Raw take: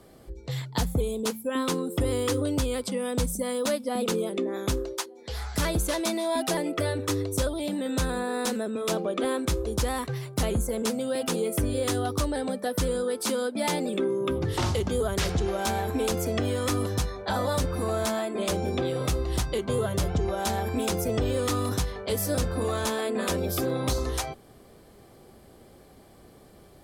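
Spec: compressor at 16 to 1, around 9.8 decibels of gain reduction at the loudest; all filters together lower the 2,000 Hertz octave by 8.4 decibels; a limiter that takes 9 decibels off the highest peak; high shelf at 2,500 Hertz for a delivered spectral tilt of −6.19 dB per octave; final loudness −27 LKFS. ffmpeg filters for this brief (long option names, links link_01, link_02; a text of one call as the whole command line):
ffmpeg -i in.wav -af "equalizer=frequency=2000:width_type=o:gain=-8,highshelf=frequency=2500:gain=-7,acompressor=threshold=-32dB:ratio=16,volume=11.5dB,alimiter=limit=-18.5dB:level=0:latency=1" out.wav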